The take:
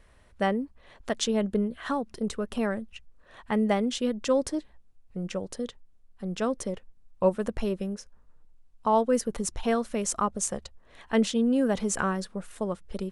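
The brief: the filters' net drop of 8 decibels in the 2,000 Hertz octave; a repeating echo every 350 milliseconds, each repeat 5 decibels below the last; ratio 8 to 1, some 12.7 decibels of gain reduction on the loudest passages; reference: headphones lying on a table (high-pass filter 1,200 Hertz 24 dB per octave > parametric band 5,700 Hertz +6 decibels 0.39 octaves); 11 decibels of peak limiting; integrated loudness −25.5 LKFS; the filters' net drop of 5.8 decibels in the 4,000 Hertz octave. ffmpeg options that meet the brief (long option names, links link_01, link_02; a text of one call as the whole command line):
ffmpeg -i in.wav -af "equalizer=frequency=2000:width_type=o:gain=-8.5,equalizer=frequency=4000:width_type=o:gain=-8,acompressor=threshold=-32dB:ratio=8,alimiter=level_in=7dB:limit=-24dB:level=0:latency=1,volume=-7dB,highpass=frequency=1200:width=0.5412,highpass=frequency=1200:width=1.3066,equalizer=frequency=5700:width_type=o:width=0.39:gain=6,aecho=1:1:350|700|1050|1400|1750|2100|2450:0.562|0.315|0.176|0.0988|0.0553|0.031|0.0173,volume=22dB" out.wav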